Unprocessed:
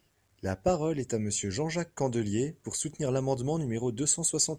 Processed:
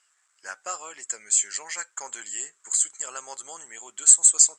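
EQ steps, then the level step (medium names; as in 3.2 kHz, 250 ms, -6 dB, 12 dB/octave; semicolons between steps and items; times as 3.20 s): resonant high-pass 1.3 kHz, resonance Q 3.1; resonant low-pass 7.8 kHz, resonance Q 7.1; -1.5 dB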